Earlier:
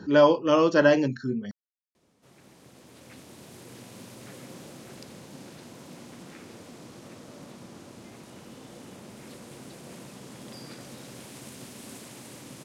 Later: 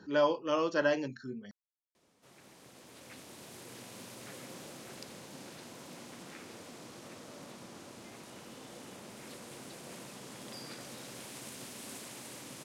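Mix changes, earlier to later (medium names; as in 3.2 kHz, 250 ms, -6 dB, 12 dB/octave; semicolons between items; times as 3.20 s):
speech -7.5 dB; master: add bass shelf 350 Hz -8 dB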